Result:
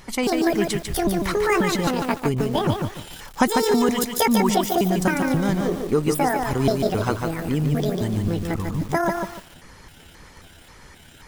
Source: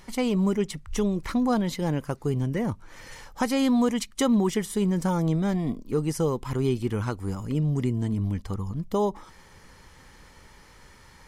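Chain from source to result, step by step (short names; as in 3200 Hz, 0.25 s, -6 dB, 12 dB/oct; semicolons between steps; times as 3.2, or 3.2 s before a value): trilling pitch shifter +9 st, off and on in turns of 0.267 s; harmonic-percussive split harmonic -7 dB; lo-fi delay 0.147 s, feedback 35%, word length 8-bit, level -4 dB; gain +8.5 dB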